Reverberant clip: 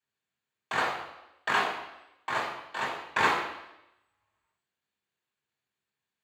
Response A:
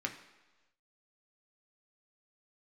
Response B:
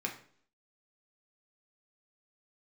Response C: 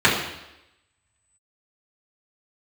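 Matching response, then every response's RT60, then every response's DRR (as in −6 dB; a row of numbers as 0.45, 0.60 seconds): C; 1.2, 0.55, 0.90 seconds; 2.5, 0.0, −8.5 decibels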